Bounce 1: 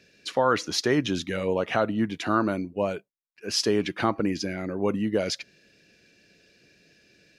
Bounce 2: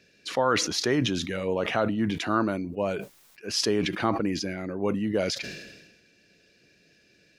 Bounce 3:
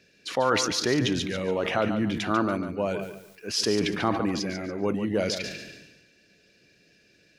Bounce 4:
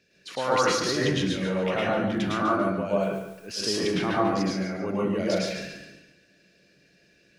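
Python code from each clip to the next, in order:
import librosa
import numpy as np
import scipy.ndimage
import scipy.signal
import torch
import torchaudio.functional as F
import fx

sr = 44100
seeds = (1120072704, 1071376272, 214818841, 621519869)

y1 = fx.sustainer(x, sr, db_per_s=47.0)
y1 = F.gain(torch.from_numpy(y1), -2.0).numpy()
y2 = fx.echo_feedback(y1, sr, ms=143, feedback_pct=29, wet_db=-9.0)
y3 = fx.rev_plate(y2, sr, seeds[0], rt60_s=0.55, hf_ratio=0.5, predelay_ms=95, drr_db=-6.0)
y3 = F.gain(torch.from_numpy(y3), -6.0).numpy()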